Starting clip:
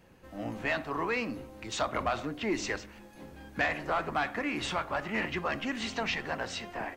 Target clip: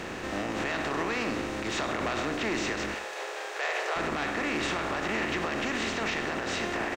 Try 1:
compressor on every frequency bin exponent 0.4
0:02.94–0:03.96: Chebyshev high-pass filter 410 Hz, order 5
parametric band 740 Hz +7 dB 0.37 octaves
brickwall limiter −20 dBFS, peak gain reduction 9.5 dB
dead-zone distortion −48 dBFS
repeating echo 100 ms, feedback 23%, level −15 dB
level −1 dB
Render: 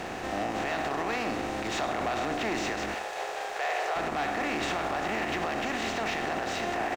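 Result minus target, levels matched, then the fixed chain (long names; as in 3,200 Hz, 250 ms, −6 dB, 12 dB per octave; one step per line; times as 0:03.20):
dead-zone distortion: distortion +11 dB; 1,000 Hz band +3.5 dB
compressor on every frequency bin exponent 0.4
0:02.94–0:03.96: Chebyshev high-pass filter 410 Hz, order 5
parametric band 740 Hz −3 dB 0.37 octaves
brickwall limiter −20 dBFS, peak gain reduction 8.5 dB
dead-zone distortion −59.5 dBFS
repeating echo 100 ms, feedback 23%, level −15 dB
level −1 dB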